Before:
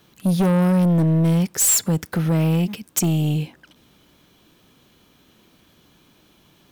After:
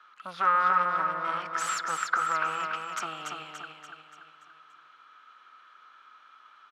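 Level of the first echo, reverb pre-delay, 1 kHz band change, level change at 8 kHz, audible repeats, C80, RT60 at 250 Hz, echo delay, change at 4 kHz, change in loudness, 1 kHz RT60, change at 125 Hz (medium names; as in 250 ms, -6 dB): -4.5 dB, no reverb, +8.0 dB, -18.5 dB, 5, no reverb, no reverb, 288 ms, -7.5 dB, -9.0 dB, no reverb, -34.5 dB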